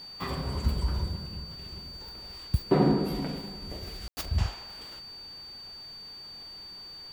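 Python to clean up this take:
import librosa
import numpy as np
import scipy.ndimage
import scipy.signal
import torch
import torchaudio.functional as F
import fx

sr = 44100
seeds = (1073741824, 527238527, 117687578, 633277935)

y = fx.notch(x, sr, hz=4600.0, q=30.0)
y = fx.fix_ambience(y, sr, seeds[0], print_start_s=5.98, print_end_s=6.48, start_s=4.08, end_s=4.17)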